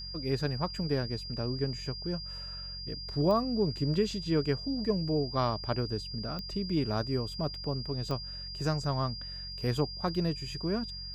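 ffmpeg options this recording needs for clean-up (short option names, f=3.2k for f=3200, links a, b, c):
-af "adeclick=t=4,bandreject=f=45.5:t=h:w=4,bandreject=f=91:t=h:w=4,bandreject=f=136.5:t=h:w=4,bandreject=f=182:t=h:w=4,bandreject=f=4.8k:w=30"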